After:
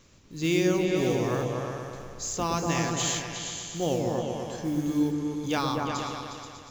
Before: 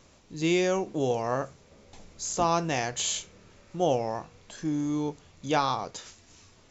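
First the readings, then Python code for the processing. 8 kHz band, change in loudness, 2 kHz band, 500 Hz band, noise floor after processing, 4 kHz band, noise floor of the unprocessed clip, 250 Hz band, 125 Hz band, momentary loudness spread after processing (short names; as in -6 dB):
n/a, +0.5 dB, +1.5 dB, +0.5 dB, -47 dBFS, +1.5 dB, -58 dBFS, +3.5 dB, +4.5 dB, 11 LU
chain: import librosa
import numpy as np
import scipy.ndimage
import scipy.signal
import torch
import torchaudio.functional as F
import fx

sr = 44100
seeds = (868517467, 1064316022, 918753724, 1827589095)

y = fx.peak_eq(x, sr, hz=730.0, db=-7.5, octaves=1.0)
y = fx.mod_noise(y, sr, seeds[0], snr_db=25)
y = fx.echo_opening(y, sr, ms=120, hz=400, octaves=2, feedback_pct=70, wet_db=0)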